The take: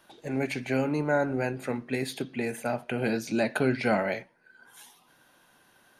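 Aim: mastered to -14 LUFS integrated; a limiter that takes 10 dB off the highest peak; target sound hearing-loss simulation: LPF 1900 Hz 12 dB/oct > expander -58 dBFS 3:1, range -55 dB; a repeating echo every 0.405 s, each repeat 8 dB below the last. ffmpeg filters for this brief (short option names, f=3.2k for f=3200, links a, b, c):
-af "alimiter=limit=-23dB:level=0:latency=1,lowpass=1.9k,aecho=1:1:405|810|1215|1620|2025:0.398|0.159|0.0637|0.0255|0.0102,agate=range=-55dB:threshold=-58dB:ratio=3,volume=19.5dB"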